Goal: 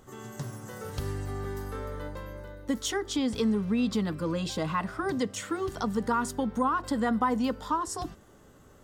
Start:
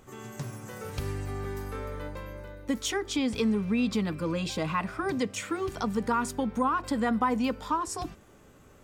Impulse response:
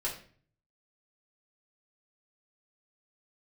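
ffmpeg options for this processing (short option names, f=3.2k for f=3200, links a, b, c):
-af "equalizer=f=2.4k:t=o:w=0.22:g=-11"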